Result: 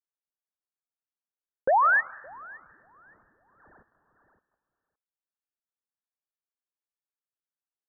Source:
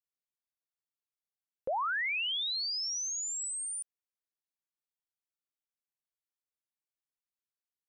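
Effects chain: bass shelf 150 Hz -11 dB; thinning echo 566 ms, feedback 20%, high-pass 720 Hz, level -14 dB; on a send at -13.5 dB: reverberation RT60 0.90 s, pre-delay 110 ms; on the sum: waveshaping leveller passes 3; Chebyshev low-pass 1.8 kHz, order 10; upward expansion 1.5:1, over -40 dBFS; trim +9 dB

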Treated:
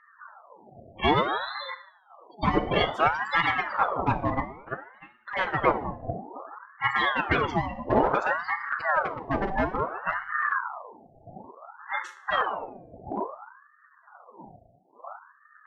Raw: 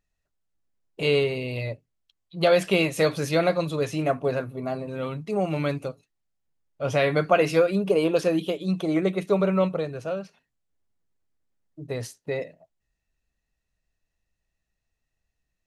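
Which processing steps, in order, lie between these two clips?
wind noise 160 Hz -32 dBFS; spectral noise reduction 7 dB; spectral gate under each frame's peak -15 dB strong; 4.34–5.28 s: gate -27 dBFS, range -27 dB; dynamic bell 660 Hz, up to +8 dB, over -36 dBFS, Q 0.82; level rider gain up to 8 dB; in parallel at -5 dB: hard clipper -11 dBFS, distortion -11 dB; on the sum: spectral gate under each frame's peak -10 dB weak; distance through air 200 m; FDN reverb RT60 0.68 s, low-frequency decay 1.4×, high-frequency decay 0.8×, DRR 7.5 dB; ring modulator with a swept carrier 950 Hz, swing 60%, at 0.58 Hz

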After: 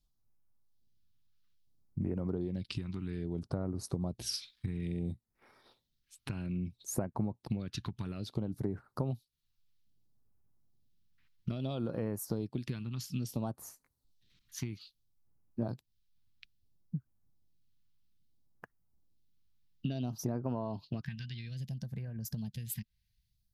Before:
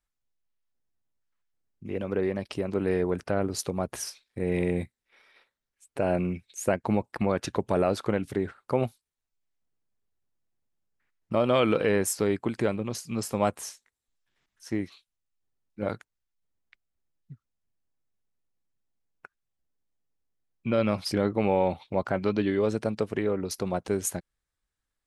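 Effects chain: gliding tape speed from 91% -> 122%; graphic EQ 125/500/2000/4000/8000 Hz +5/-7/-7/+5/-12 dB; compression 8:1, threshold -40 dBFS, peak gain reduction 19.5 dB; phase shifter stages 2, 0.6 Hz, lowest notch 550–3300 Hz; time-frequency box 21.04–23.63 s, 230–1500 Hz -17 dB; trim +8 dB

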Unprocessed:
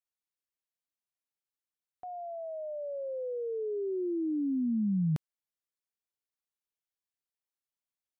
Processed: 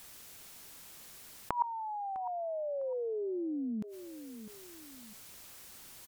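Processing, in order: tone controls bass +4 dB, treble +2 dB; peak limiter -29 dBFS, peak gain reduction 8 dB; inverted gate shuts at -37 dBFS, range -28 dB; feedback delay 883 ms, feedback 24%, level -23 dB; speed mistake 33 rpm record played at 45 rpm; level flattener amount 50%; trim +16.5 dB

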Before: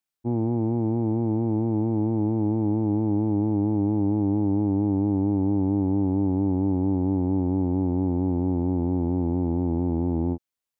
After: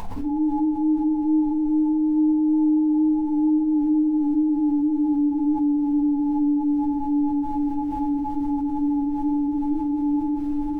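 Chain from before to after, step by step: formants replaced by sine waves; reverb removal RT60 0.51 s; FFT band-pass 280–1100 Hz; upward compressor, threshold -33 dBFS; added noise brown -57 dBFS; tremolo triangle 2.4 Hz, depth 75%; echo that smears into a reverb 504 ms, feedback 42%, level -9 dB; simulated room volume 200 m³, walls furnished, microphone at 1.7 m; level flattener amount 70%

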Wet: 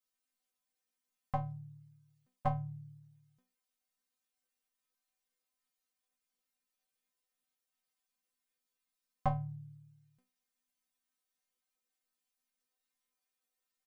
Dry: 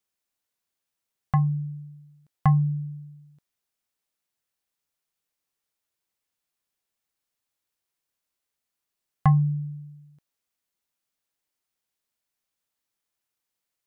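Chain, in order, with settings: inharmonic resonator 250 Hz, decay 0.3 s, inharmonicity 0.002; harmony voices -5 st -7 dB; trim +8 dB

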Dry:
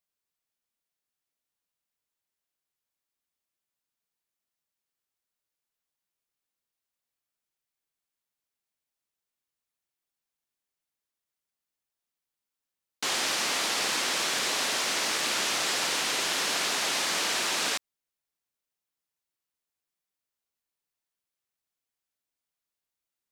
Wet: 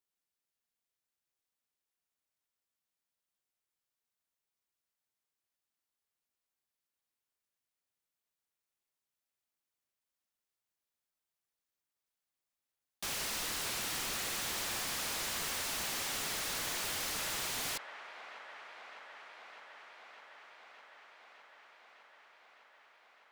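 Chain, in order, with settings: ring modulator 250 Hz; wavefolder -32 dBFS; feedback echo behind a band-pass 607 ms, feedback 81%, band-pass 1.1 kHz, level -9 dB

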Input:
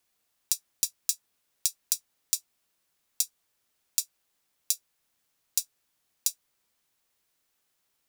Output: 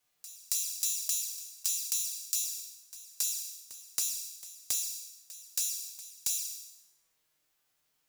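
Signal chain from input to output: spectral sustain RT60 0.89 s; peaking EQ 9.3 kHz -3 dB 0.21 oct; compression 1.5:1, threshold -30 dBFS, peak gain reduction 4 dB; touch-sensitive flanger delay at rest 6.7 ms, full sweep at -25.5 dBFS; pre-echo 274 ms -16.5 dB; gated-style reverb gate 200 ms falling, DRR 9 dB

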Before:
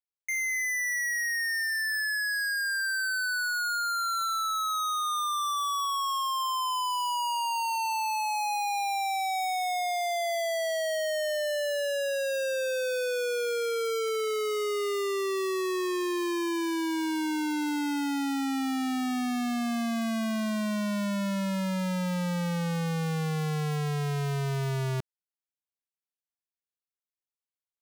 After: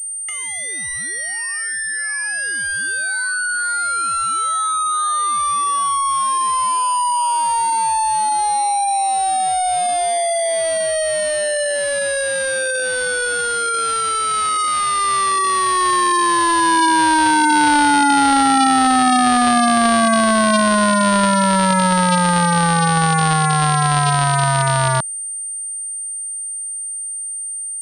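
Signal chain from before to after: high-pass 720 Hz 6 dB/octave; compressor with a negative ratio -37 dBFS, ratio -0.5; static phaser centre 1 kHz, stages 4; loudness maximiser +28.5 dB; class-D stage that switches slowly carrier 8.8 kHz; trim -1 dB

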